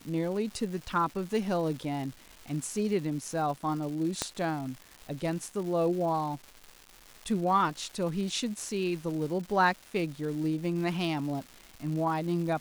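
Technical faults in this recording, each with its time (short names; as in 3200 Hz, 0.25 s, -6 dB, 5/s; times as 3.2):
crackle 480/s -39 dBFS
4.22 pop -13 dBFS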